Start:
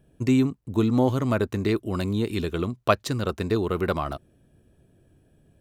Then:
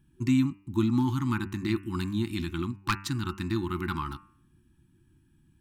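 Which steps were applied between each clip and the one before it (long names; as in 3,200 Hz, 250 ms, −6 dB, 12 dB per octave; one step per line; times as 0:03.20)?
wave folding −10.5 dBFS
hum removal 98.41 Hz, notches 29
brick-wall band-stop 370–810 Hz
level −3 dB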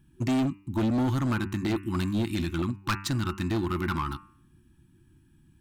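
hard clipping −26 dBFS, distortion −9 dB
level +3.5 dB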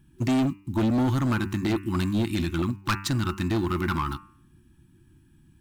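one scale factor per block 7 bits
level +2.5 dB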